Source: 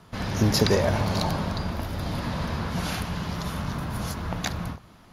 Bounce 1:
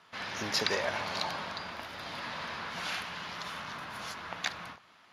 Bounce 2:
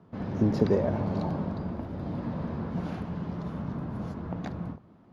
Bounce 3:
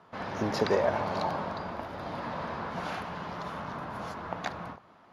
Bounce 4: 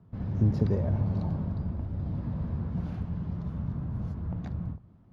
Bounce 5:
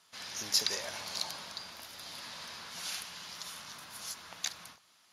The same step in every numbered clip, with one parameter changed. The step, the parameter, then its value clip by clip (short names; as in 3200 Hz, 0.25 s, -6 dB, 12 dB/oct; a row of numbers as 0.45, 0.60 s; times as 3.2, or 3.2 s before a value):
band-pass, frequency: 2300, 270, 840, 100, 7000 Hz